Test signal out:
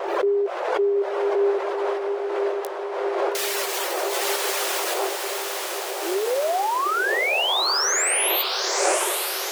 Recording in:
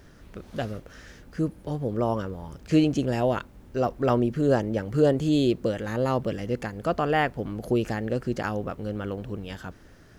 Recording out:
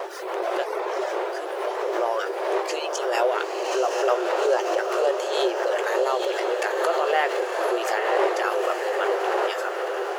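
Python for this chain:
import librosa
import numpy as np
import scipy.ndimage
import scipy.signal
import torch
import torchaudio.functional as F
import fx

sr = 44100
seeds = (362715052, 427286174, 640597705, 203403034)

p1 = fx.dmg_wind(x, sr, seeds[0], corner_hz=490.0, level_db=-30.0)
p2 = fx.notch(p1, sr, hz=450.0, q=12.0)
p3 = fx.dereverb_blind(p2, sr, rt60_s=0.75)
p4 = fx.over_compress(p3, sr, threshold_db=-34.0, ratio=-1.0)
p5 = p3 + (p4 * librosa.db_to_amplitude(2.0))
p6 = fx.vibrato(p5, sr, rate_hz=0.54, depth_cents=7.4)
p7 = fx.brickwall_highpass(p6, sr, low_hz=350.0)
p8 = fx.doubler(p7, sr, ms=18.0, db=-10.5)
p9 = p8 + fx.echo_diffused(p8, sr, ms=906, feedback_pct=64, wet_db=-4, dry=0)
y = fx.pre_swell(p9, sr, db_per_s=42.0)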